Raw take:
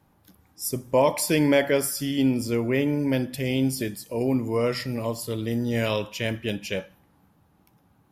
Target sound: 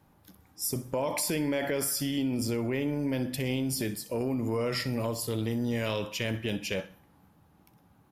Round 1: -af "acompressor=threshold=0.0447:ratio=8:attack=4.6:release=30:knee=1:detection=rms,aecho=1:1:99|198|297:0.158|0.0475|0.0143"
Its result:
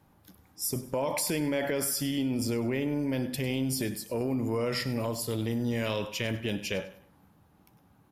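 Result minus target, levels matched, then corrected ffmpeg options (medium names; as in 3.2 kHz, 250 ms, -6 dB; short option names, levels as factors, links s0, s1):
echo 36 ms late
-af "acompressor=threshold=0.0447:ratio=8:attack=4.6:release=30:knee=1:detection=rms,aecho=1:1:63|126|189:0.158|0.0475|0.0143"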